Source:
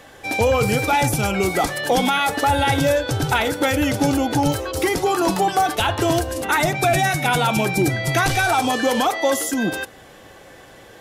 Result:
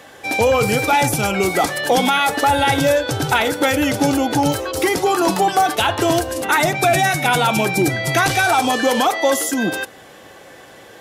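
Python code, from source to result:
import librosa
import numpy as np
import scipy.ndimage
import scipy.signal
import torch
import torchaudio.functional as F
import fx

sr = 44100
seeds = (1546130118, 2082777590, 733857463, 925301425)

y = fx.highpass(x, sr, hz=160.0, slope=6)
y = y * librosa.db_to_amplitude(3.0)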